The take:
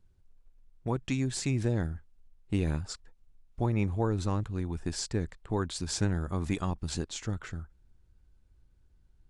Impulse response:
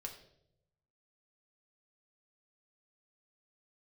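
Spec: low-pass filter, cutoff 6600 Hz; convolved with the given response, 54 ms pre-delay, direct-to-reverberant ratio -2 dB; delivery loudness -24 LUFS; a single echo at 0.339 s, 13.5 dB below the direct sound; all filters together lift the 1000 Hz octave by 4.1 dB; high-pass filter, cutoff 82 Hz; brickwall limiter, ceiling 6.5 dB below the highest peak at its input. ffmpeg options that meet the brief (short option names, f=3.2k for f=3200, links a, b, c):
-filter_complex "[0:a]highpass=82,lowpass=6.6k,equalizer=f=1k:t=o:g=5,alimiter=limit=-21.5dB:level=0:latency=1,aecho=1:1:339:0.211,asplit=2[a][b];[1:a]atrim=start_sample=2205,adelay=54[c];[b][c]afir=irnorm=-1:irlink=0,volume=5dB[d];[a][d]amix=inputs=2:normalize=0,volume=6dB"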